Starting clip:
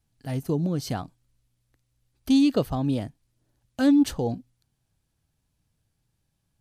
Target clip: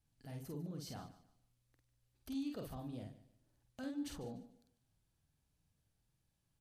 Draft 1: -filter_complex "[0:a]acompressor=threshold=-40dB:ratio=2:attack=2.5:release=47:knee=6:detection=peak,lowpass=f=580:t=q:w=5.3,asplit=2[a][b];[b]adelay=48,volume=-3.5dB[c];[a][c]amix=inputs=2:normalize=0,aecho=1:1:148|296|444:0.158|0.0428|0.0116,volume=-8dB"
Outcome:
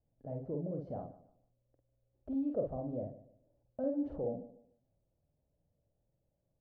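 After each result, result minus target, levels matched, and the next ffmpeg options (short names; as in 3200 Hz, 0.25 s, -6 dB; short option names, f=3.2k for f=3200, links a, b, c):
500 Hz band +6.5 dB; compressor: peak gain reduction -4 dB
-filter_complex "[0:a]acompressor=threshold=-40dB:ratio=2:attack=2.5:release=47:knee=6:detection=peak,asplit=2[a][b];[b]adelay=48,volume=-3.5dB[c];[a][c]amix=inputs=2:normalize=0,aecho=1:1:148|296|444:0.158|0.0428|0.0116,volume=-8dB"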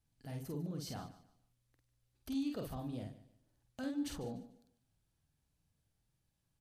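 compressor: peak gain reduction -4 dB
-filter_complex "[0:a]acompressor=threshold=-47.5dB:ratio=2:attack=2.5:release=47:knee=6:detection=peak,asplit=2[a][b];[b]adelay=48,volume=-3.5dB[c];[a][c]amix=inputs=2:normalize=0,aecho=1:1:148|296|444:0.158|0.0428|0.0116,volume=-8dB"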